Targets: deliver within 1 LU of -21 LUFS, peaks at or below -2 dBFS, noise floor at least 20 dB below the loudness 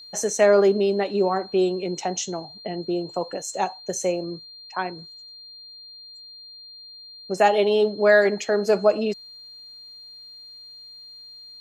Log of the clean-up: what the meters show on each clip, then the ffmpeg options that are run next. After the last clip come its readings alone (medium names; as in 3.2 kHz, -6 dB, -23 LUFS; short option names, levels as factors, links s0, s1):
steady tone 4.2 kHz; tone level -41 dBFS; loudness -22.5 LUFS; peak level -4.5 dBFS; loudness target -21.0 LUFS
-> -af "bandreject=f=4200:w=30"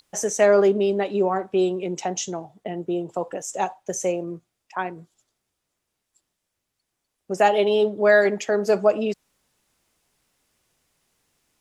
steady tone not found; loudness -22.5 LUFS; peak level -5.0 dBFS; loudness target -21.0 LUFS
-> -af "volume=1.19"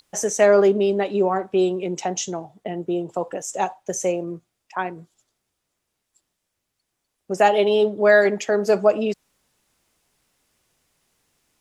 loudness -21.0 LUFS; peak level -3.5 dBFS; noise floor -79 dBFS